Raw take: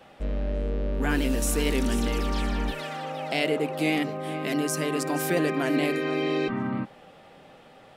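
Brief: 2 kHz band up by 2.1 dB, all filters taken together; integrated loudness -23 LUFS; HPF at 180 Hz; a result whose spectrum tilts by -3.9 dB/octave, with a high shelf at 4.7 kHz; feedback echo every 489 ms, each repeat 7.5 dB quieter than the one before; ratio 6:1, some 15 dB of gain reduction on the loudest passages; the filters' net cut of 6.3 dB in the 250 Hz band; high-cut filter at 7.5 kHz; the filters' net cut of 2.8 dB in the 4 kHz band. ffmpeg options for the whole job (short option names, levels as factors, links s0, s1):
-af "highpass=180,lowpass=7500,equalizer=f=250:t=o:g=-7,equalizer=f=2000:t=o:g=4,equalizer=f=4000:t=o:g=-8,highshelf=f=4700:g=4,acompressor=threshold=0.0112:ratio=6,aecho=1:1:489|978|1467|1956|2445:0.422|0.177|0.0744|0.0312|0.0131,volume=7.5"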